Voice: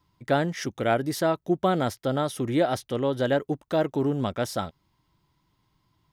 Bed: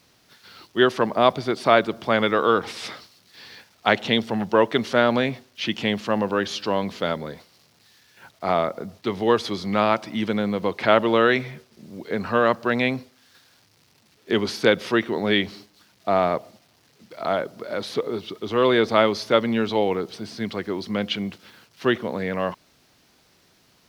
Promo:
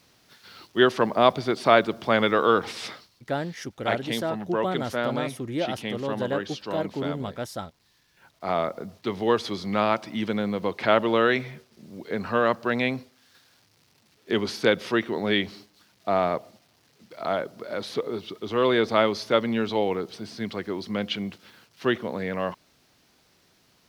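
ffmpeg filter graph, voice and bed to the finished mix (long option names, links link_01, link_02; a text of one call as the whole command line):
ffmpeg -i stem1.wav -i stem2.wav -filter_complex "[0:a]adelay=3000,volume=-5dB[link_01];[1:a]volume=5dB,afade=type=out:start_time=2.81:duration=0.28:silence=0.398107,afade=type=in:start_time=8.23:duration=0.42:silence=0.501187[link_02];[link_01][link_02]amix=inputs=2:normalize=0" out.wav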